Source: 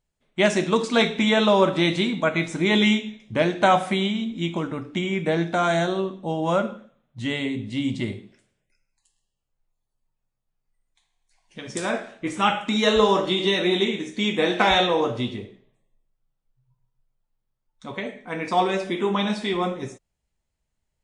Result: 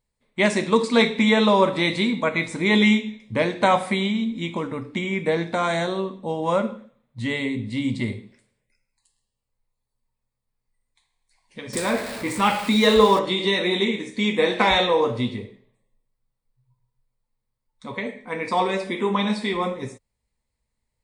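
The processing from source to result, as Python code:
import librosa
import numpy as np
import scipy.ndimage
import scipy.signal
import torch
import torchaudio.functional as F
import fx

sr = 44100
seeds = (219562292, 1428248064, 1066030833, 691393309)

y = fx.zero_step(x, sr, step_db=-28.5, at=(11.73, 13.19))
y = fx.ripple_eq(y, sr, per_octave=0.95, db=7)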